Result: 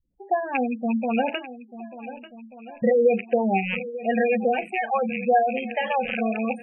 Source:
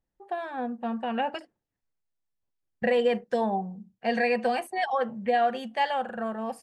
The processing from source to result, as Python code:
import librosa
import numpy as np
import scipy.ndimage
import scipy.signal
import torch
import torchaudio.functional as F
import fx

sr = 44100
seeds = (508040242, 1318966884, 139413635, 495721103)

p1 = fx.rattle_buzz(x, sr, strikes_db=-47.0, level_db=-18.0)
p2 = fx.high_shelf(p1, sr, hz=2700.0, db=-3.5)
p3 = fx.rider(p2, sr, range_db=4, speed_s=2.0)
p4 = fx.rotary(p3, sr, hz=5.0)
p5 = fx.doubler(p4, sr, ms=36.0, db=-13.0)
p6 = p5 + fx.echo_swing(p5, sr, ms=1486, ratio=1.5, feedback_pct=38, wet_db=-15, dry=0)
p7 = fx.spec_gate(p6, sr, threshold_db=-15, keep='strong')
y = p7 * 10.0 ** (7.0 / 20.0)